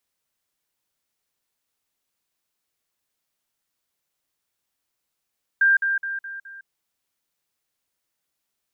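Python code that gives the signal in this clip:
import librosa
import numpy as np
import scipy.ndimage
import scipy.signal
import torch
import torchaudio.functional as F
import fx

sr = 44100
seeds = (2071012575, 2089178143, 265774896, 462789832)

y = fx.level_ladder(sr, hz=1590.0, from_db=-13.5, step_db=-6.0, steps=5, dwell_s=0.16, gap_s=0.05)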